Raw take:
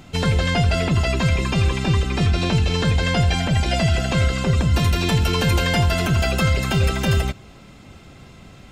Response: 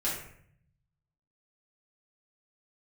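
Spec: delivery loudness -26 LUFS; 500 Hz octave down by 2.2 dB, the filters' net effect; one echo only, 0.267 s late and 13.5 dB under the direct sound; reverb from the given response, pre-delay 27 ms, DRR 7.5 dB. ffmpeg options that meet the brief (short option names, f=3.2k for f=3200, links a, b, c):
-filter_complex "[0:a]equalizer=f=500:t=o:g=-3,aecho=1:1:267:0.211,asplit=2[a][b];[1:a]atrim=start_sample=2205,adelay=27[c];[b][c]afir=irnorm=-1:irlink=0,volume=-14.5dB[d];[a][d]amix=inputs=2:normalize=0,volume=-6.5dB"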